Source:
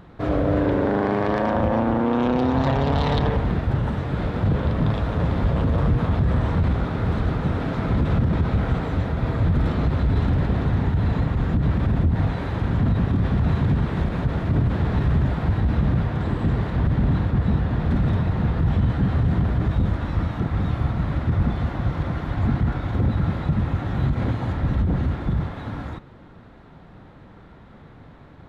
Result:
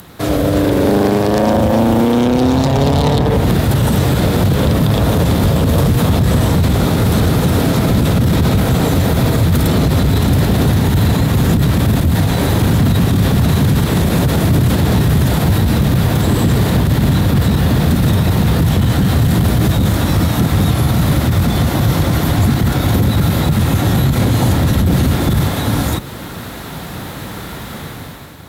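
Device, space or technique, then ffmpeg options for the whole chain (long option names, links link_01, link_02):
FM broadcast chain: -filter_complex "[0:a]highpass=55,dynaudnorm=framelen=160:gausssize=9:maxgain=11.5dB,acrossover=split=83|790|2600[link_01][link_02][link_03][link_04];[link_01]acompressor=threshold=-28dB:ratio=4[link_05];[link_02]acompressor=threshold=-15dB:ratio=4[link_06];[link_03]acompressor=threshold=-39dB:ratio=4[link_07];[link_04]acompressor=threshold=-47dB:ratio=4[link_08];[link_05][link_06][link_07][link_08]amix=inputs=4:normalize=0,aemphasis=mode=production:type=75fm,alimiter=limit=-12.5dB:level=0:latency=1:release=31,asoftclip=type=hard:threshold=-14.5dB,lowpass=frequency=15000:width=0.5412,lowpass=frequency=15000:width=1.3066,aemphasis=mode=production:type=75fm,volume=8.5dB"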